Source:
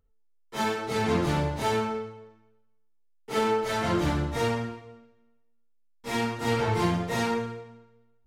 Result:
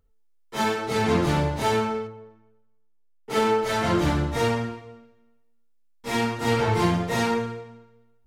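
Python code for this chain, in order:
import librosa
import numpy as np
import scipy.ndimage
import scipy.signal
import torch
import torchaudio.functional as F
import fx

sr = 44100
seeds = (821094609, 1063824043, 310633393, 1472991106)

y = fx.high_shelf(x, sr, hz=2500.0, db=-11.5, at=(2.07, 3.3))
y = y * 10.0 ** (3.5 / 20.0)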